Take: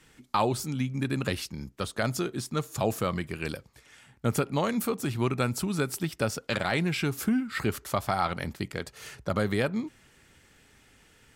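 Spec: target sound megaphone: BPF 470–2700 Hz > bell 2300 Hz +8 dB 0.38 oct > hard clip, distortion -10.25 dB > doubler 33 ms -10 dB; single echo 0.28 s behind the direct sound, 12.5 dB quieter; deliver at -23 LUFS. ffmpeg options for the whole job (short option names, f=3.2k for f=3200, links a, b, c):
-filter_complex "[0:a]highpass=470,lowpass=2.7k,equalizer=f=2.3k:t=o:w=0.38:g=8,aecho=1:1:280:0.237,asoftclip=type=hard:threshold=-25dB,asplit=2[a][b];[b]adelay=33,volume=-10dB[c];[a][c]amix=inputs=2:normalize=0,volume=11dB"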